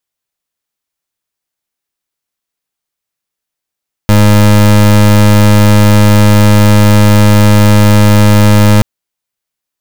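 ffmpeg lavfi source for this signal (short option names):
-f lavfi -i "aevalsrc='0.596*(2*lt(mod(104*t,1),0.28)-1)':d=4.73:s=44100"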